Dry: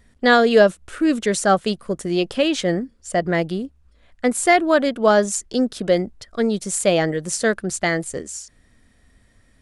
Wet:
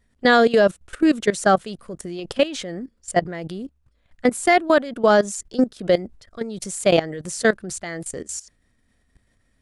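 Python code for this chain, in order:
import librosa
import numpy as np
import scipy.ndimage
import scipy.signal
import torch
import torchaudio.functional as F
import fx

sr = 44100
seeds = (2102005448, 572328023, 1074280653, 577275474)

y = fx.level_steps(x, sr, step_db=17)
y = y * librosa.db_to_amplitude(3.5)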